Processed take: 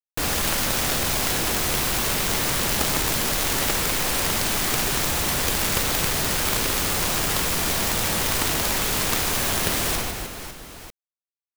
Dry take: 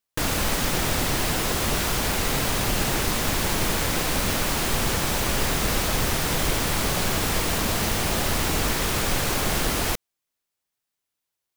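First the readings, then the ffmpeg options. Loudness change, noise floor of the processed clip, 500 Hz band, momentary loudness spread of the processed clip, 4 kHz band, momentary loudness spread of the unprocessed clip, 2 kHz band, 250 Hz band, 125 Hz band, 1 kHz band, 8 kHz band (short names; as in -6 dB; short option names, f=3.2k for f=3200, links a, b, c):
+2.0 dB, under -85 dBFS, -1.0 dB, 2 LU, +2.0 dB, 0 LU, +1.0 dB, -2.0 dB, -2.5 dB, 0.0 dB, +3.5 dB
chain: -af "acrusher=bits=4:mix=0:aa=0.000001,aecho=1:1:60|156|309.6|555.4|948.6:0.631|0.398|0.251|0.158|0.1,aeval=exprs='0.531*(cos(1*acos(clip(val(0)/0.531,-1,1)))-cos(1*PI/2))+0.266*(cos(7*acos(clip(val(0)/0.531,-1,1)))-cos(7*PI/2))':c=same,volume=-4.5dB"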